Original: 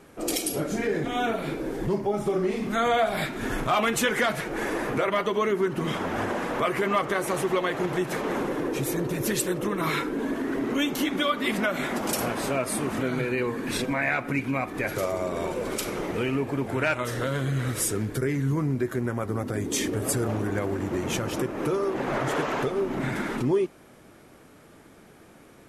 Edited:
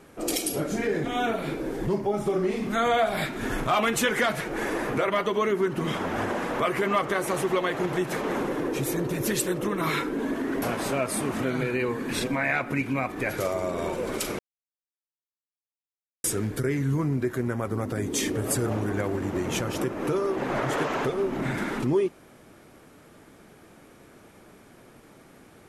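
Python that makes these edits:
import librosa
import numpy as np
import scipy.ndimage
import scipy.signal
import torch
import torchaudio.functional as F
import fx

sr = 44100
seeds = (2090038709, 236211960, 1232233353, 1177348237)

y = fx.edit(x, sr, fx.cut(start_s=10.62, length_s=1.58),
    fx.silence(start_s=15.97, length_s=1.85), tone=tone)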